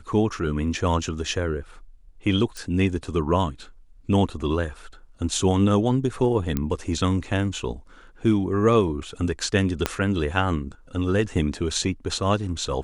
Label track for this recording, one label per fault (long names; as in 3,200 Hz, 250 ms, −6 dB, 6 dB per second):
2.570000	2.570000	click
6.570000	6.570000	click −11 dBFS
9.860000	9.860000	click −6 dBFS